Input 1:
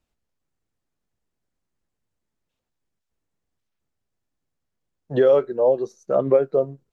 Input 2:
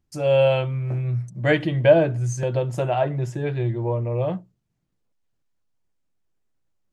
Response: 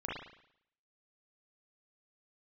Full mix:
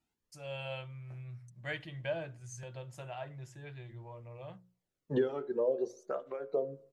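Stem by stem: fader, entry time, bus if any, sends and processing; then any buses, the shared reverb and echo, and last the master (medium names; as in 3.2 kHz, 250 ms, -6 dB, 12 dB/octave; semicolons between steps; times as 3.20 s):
-1.5 dB, 0.00 s, send -21.5 dB, compression 8:1, threshold -24 dBFS, peak gain reduction 13 dB; cancelling through-zero flanger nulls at 0.56 Hz, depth 1.9 ms
-13.0 dB, 0.20 s, no send, peaking EQ 320 Hz -13 dB 2.7 oct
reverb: on, RT60 0.70 s, pre-delay 35 ms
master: hum notches 60/120/180/240/300/360/420/480/540 Hz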